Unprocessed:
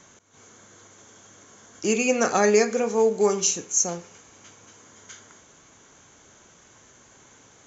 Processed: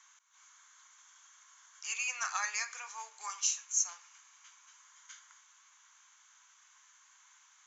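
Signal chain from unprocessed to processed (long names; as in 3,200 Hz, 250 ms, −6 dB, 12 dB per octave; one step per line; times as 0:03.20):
elliptic high-pass filter 1,000 Hz, stop band 80 dB
level −7.5 dB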